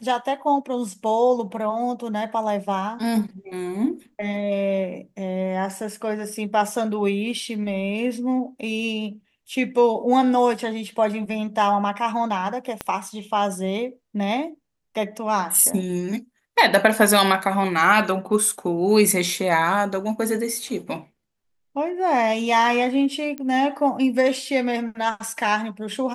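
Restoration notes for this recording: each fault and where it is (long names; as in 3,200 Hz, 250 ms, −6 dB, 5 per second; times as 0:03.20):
0:12.81: click −12 dBFS
0:23.38: click −18 dBFS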